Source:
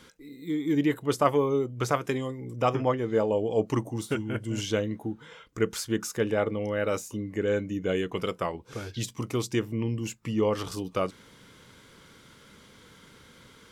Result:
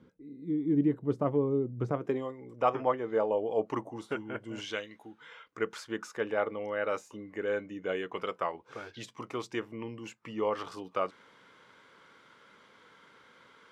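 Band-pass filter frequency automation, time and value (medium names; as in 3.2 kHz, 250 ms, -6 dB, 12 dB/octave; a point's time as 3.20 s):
band-pass filter, Q 0.77
1.89 s 200 Hz
2.30 s 910 Hz
4.57 s 910 Hz
4.87 s 3.3 kHz
5.61 s 1.1 kHz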